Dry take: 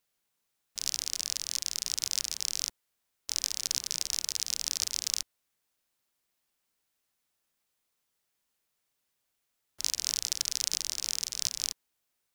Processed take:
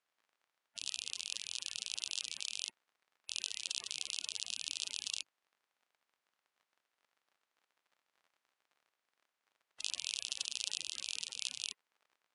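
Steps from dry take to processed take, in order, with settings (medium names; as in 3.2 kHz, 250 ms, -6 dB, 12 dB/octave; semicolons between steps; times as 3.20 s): coarse spectral quantiser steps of 30 dB; crackle 44 per s -53 dBFS; band-pass filter 1.2 kHz, Q 0.6; trim +1 dB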